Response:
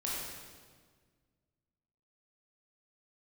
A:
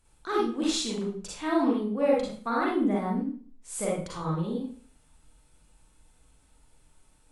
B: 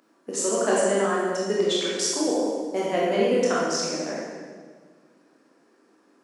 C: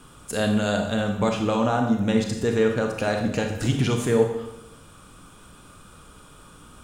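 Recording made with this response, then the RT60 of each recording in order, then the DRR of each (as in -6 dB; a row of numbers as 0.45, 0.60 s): B; 0.45, 1.6, 0.85 s; -5.0, -6.0, 3.5 dB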